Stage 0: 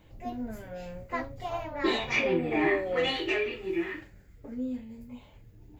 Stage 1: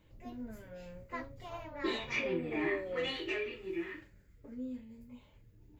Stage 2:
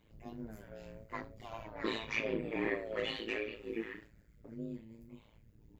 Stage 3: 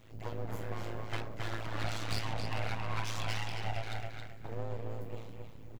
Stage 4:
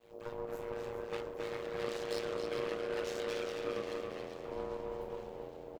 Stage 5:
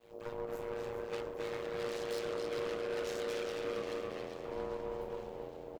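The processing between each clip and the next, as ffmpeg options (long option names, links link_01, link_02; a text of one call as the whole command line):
ffmpeg -i in.wav -af "equalizer=frequency=750:width_type=o:width=0.21:gain=-10.5,volume=-7.5dB" out.wav
ffmpeg -i in.wav -af "tremolo=f=110:d=0.947,volume=2.5dB" out.wav
ffmpeg -i in.wav -filter_complex "[0:a]acompressor=threshold=-43dB:ratio=6,aeval=exprs='abs(val(0))':channel_layout=same,asplit=2[link_01][link_02];[link_02]adelay=271,lowpass=frequency=4900:poles=1,volume=-4dB,asplit=2[link_03][link_04];[link_04]adelay=271,lowpass=frequency=4900:poles=1,volume=0.26,asplit=2[link_05][link_06];[link_06]adelay=271,lowpass=frequency=4900:poles=1,volume=0.26,asplit=2[link_07][link_08];[link_08]adelay=271,lowpass=frequency=4900:poles=1,volume=0.26[link_09];[link_01][link_03][link_05][link_07][link_09]amix=inputs=5:normalize=0,volume=11dB" out.wav
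ffmpeg -i in.wav -filter_complex "[0:a]asplit=9[link_01][link_02][link_03][link_04][link_05][link_06][link_07][link_08][link_09];[link_02]adelay=408,afreqshift=-85,volume=-10dB[link_10];[link_03]adelay=816,afreqshift=-170,volume=-14.2dB[link_11];[link_04]adelay=1224,afreqshift=-255,volume=-18.3dB[link_12];[link_05]adelay=1632,afreqshift=-340,volume=-22.5dB[link_13];[link_06]adelay=2040,afreqshift=-425,volume=-26.6dB[link_14];[link_07]adelay=2448,afreqshift=-510,volume=-30.8dB[link_15];[link_08]adelay=2856,afreqshift=-595,volume=-34.9dB[link_16];[link_09]adelay=3264,afreqshift=-680,volume=-39.1dB[link_17];[link_01][link_10][link_11][link_12][link_13][link_14][link_15][link_16][link_17]amix=inputs=9:normalize=0,agate=range=-33dB:threshold=-58dB:ratio=3:detection=peak,aeval=exprs='val(0)*sin(2*PI*470*n/s)':channel_layout=same,volume=-2.5dB" out.wav
ffmpeg -i in.wav -af "asoftclip=type=hard:threshold=-31.5dB,volume=1dB" out.wav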